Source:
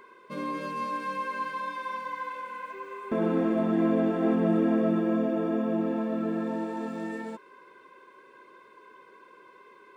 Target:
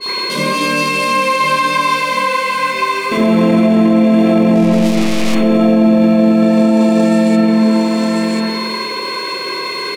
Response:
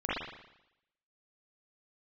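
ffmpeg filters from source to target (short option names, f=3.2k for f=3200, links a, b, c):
-filter_complex "[0:a]aeval=exprs='val(0)+0.00126*sin(2*PI*4300*n/s)':c=same,aecho=1:1:1039:0.473,asettb=1/sr,asplit=3[a][b][c];[a]atrim=end=4.554[d];[b]atrim=start=4.55:end=5.35,asetpts=PTS-STARTPTS,afade=t=in:d=0.004:c=qsin,afade=t=out:st=0.796:d=0.004:c=qsin,aeval=exprs='(tanh(126*val(0)+0.55)-tanh(0.55))/126':c=same[e];[c]atrim=start=5.346[f];[d][e]acrossfade=d=0.004:c1=hsin:c2=qsin[g];[g][f]acrossfade=d=0.004:c1=qsin:c2=hsin,acompressor=mode=upward:threshold=-33dB:ratio=2.5,aexciter=amount=15.2:drive=4:freq=2.4k[h];[1:a]atrim=start_sample=2205,asetrate=29106,aresample=44100[i];[h][i]afir=irnorm=-1:irlink=0,alimiter=level_in=10.5dB:limit=-1dB:release=50:level=0:latency=1,adynamicequalizer=threshold=0.0794:dfrequency=1800:dqfactor=0.7:tfrequency=1800:tqfactor=0.7:attack=5:release=100:ratio=0.375:range=2:mode=cutabove:tftype=highshelf,volume=-2.5dB"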